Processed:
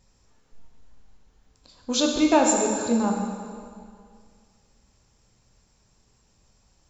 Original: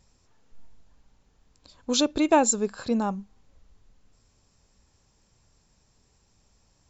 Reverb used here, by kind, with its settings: plate-style reverb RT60 2.1 s, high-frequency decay 0.9×, DRR 0 dB; trim -1 dB

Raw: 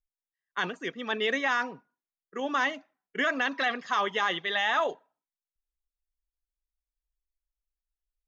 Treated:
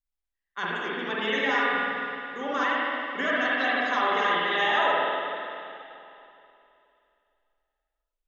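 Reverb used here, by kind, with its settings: spring tank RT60 2.8 s, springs 47/52 ms, chirp 35 ms, DRR -7 dB; trim -4 dB

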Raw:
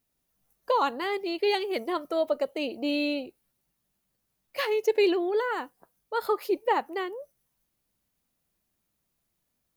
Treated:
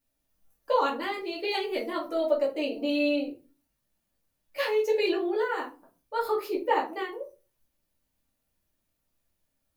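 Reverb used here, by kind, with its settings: simulated room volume 130 m³, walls furnished, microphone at 2.4 m; trim -6.5 dB

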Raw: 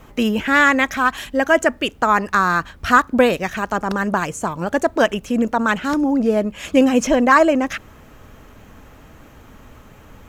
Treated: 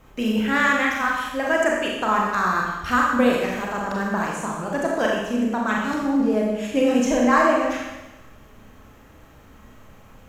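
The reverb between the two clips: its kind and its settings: Schroeder reverb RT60 1.1 s, combs from 29 ms, DRR -2.5 dB; trim -8.5 dB

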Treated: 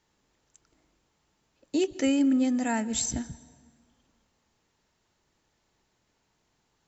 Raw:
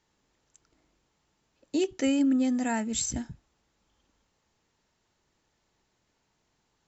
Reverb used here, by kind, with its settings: plate-style reverb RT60 1.8 s, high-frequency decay 0.7×, pre-delay 110 ms, DRR 19 dB; trim +1 dB

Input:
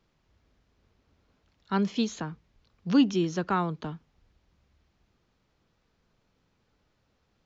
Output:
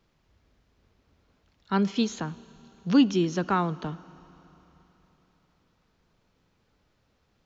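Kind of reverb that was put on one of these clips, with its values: Schroeder reverb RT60 3.8 s, combs from 26 ms, DRR 19.5 dB; trim +2 dB

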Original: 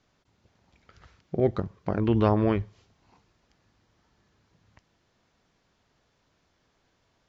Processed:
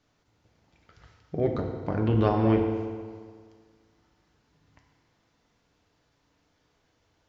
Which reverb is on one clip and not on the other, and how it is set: FDN reverb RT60 1.8 s, low-frequency decay 0.95×, high-frequency decay 0.8×, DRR 1.5 dB; trim -2.5 dB

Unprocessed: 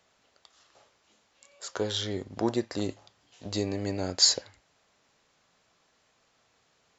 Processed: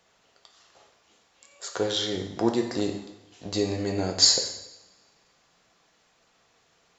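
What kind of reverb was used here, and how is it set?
two-slope reverb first 0.83 s, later 2.1 s, from -25 dB, DRR 3 dB; trim +2 dB

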